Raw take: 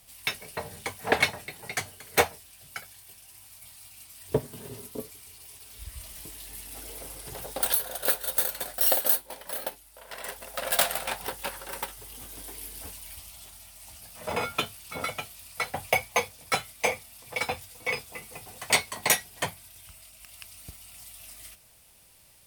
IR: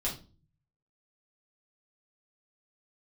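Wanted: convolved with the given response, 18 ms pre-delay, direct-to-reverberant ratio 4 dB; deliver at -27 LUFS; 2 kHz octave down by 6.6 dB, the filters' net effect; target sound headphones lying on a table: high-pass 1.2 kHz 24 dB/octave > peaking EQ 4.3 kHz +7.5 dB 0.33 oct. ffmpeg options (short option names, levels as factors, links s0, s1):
-filter_complex "[0:a]equalizer=f=2000:t=o:g=-8,asplit=2[s0][s1];[1:a]atrim=start_sample=2205,adelay=18[s2];[s1][s2]afir=irnorm=-1:irlink=0,volume=0.376[s3];[s0][s3]amix=inputs=2:normalize=0,highpass=f=1200:w=0.5412,highpass=f=1200:w=1.3066,equalizer=f=4300:t=o:w=0.33:g=7.5,volume=1.26"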